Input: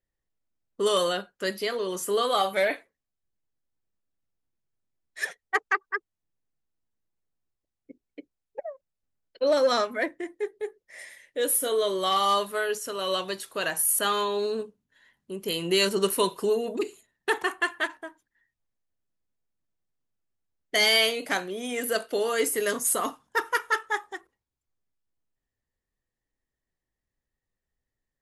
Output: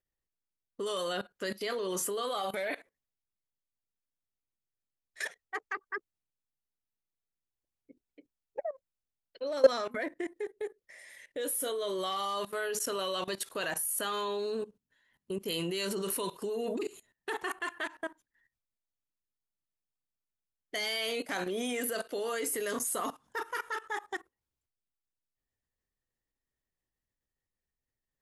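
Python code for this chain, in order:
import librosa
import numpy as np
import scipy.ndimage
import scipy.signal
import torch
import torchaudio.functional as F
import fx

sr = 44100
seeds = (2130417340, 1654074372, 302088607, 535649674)

y = fx.level_steps(x, sr, step_db=19)
y = F.gain(torch.from_numpy(y), 4.5).numpy()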